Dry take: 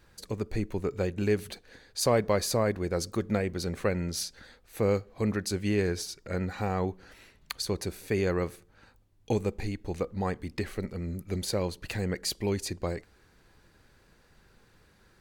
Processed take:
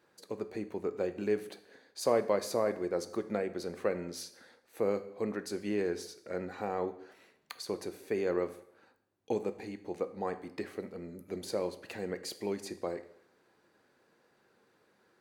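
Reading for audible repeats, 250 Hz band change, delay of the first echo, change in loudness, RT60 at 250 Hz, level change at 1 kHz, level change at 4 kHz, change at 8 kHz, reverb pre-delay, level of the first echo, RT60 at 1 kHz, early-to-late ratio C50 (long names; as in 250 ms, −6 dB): no echo audible, −6.0 dB, no echo audible, −4.5 dB, 0.70 s, −3.5 dB, −9.5 dB, −10.0 dB, 5 ms, no echo audible, 0.75 s, 14.0 dB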